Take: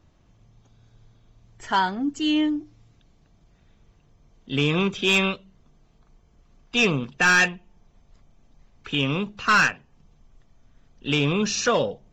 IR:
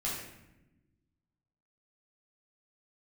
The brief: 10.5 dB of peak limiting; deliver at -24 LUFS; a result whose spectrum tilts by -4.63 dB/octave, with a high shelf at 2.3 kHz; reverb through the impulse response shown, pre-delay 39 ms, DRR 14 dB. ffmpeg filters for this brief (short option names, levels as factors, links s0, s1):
-filter_complex "[0:a]highshelf=f=2300:g=-7,alimiter=limit=0.0668:level=0:latency=1,asplit=2[s0][s1];[1:a]atrim=start_sample=2205,adelay=39[s2];[s1][s2]afir=irnorm=-1:irlink=0,volume=0.119[s3];[s0][s3]amix=inputs=2:normalize=0,volume=2.51"